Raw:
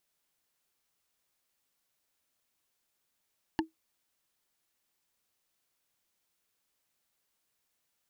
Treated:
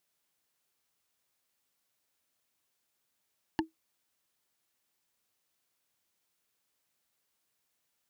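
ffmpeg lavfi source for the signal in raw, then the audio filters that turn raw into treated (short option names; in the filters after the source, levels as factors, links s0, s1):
-f lavfi -i "aevalsrc='0.0794*pow(10,-3*t/0.14)*sin(2*PI*321*t)+0.0631*pow(10,-3*t/0.041)*sin(2*PI*885*t)+0.0501*pow(10,-3*t/0.018)*sin(2*PI*1734.7*t)+0.0398*pow(10,-3*t/0.01)*sin(2*PI*2867.5*t)+0.0316*pow(10,-3*t/0.006)*sin(2*PI*4282.1*t)':d=0.45:s=44100"
-af "highpass=51"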